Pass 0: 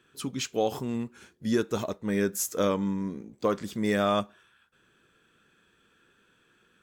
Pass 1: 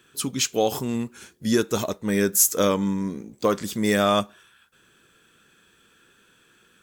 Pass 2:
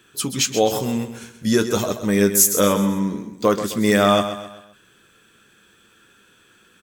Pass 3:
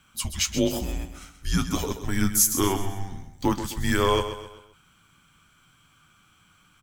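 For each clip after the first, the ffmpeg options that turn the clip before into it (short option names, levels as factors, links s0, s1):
-af "highshelf=f=4700:g=10.5,volume=1.68"
-filter_complex "[0:a]flanger=delay=9.2:depth=1:regen=-54:speed=0.35:shape=triangular,asplit=2[s0][s1];[s1]aecho=0:1:130|260|390|520:0.299|0.125|0.0527|0.0221[s2];[s0][s2]amix=inputs=2:normalize=0,volume=2.37"
-af "asubboost=boost=6:cutoff=78,afreqshift=-190,volume=0.562"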